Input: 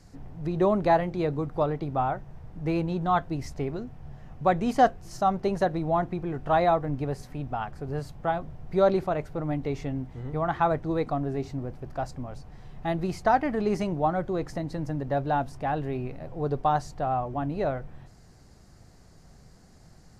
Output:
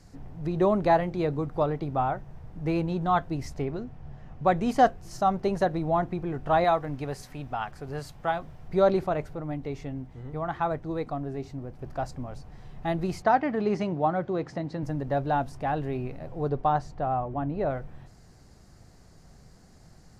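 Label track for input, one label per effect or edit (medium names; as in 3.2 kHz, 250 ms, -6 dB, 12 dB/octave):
3.620000	4.480000	treble shelf 8.2 kHz -10.5 dB
6.640000	8.680000	tilt shelf lows -4.5 dB, about 860 Hz
9.350000	11.790000	gain -4 dB
13.220000	14.830000	band-pass 110–4900 Hz
16.480000	17.690000	low-pass 3 kHz -> 1.6 kHz 6 dB/octave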